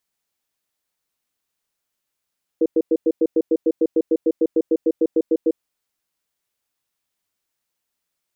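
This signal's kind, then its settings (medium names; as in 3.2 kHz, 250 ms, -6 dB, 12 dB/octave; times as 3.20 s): cadence 325 Hz, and 480 Hz, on 0.05 s, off 0.10 s, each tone -16 dBFS 2.98 s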